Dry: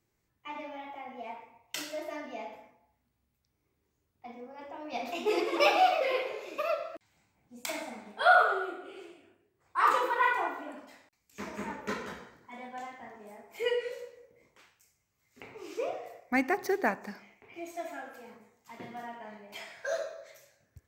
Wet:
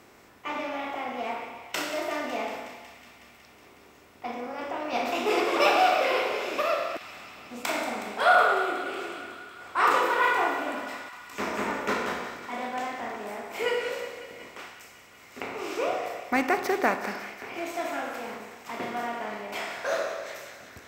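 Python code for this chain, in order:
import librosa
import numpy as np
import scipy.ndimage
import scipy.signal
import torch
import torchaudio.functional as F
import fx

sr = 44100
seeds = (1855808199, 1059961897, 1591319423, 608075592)

y = fx.bin_compress(x, sr, power=0.6)
y = fx.echo_wet_highpass(y, sr, ms=184, feedback_pct=78, hz=1600.0, wet_db=-12.5)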